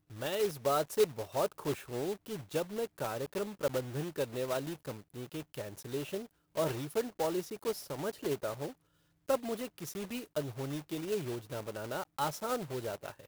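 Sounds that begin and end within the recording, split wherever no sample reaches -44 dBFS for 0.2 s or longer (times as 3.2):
6.55–8.72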